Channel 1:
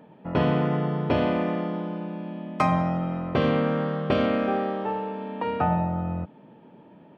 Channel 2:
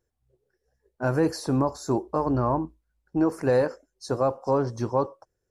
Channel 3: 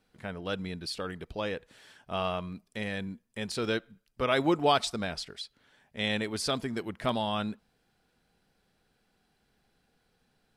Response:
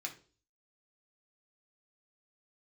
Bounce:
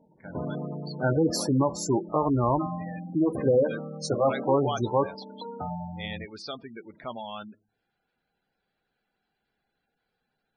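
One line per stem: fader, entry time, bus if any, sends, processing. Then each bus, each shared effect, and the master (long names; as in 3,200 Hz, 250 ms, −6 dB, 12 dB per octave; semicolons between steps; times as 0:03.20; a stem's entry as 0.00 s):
−10.0 dB, 0.00 s, no send, Bessel low-pass filter 1,700 Hz, order 4
−0.5 dB, 0.00 s, send −13.5 dB, high-shelf EQ 4,400 Hz +10 dB
−5.5 dB, 0.00 s, send −12 dB, low-pass filter 5,200 Hz 12 dB per octave; low-shelf EQ 290 Hz −8 dB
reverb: on, RT60 0.40 s, pre-delay 3 ms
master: gate on every frequency bin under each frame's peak −15 dB strong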